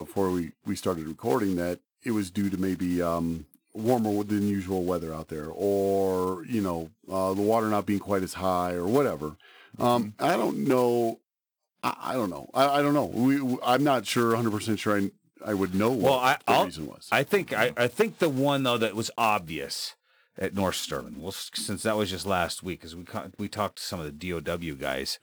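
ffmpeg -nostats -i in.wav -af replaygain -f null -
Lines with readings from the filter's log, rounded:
track_gain = +7.0 dB
track_peak = 0.336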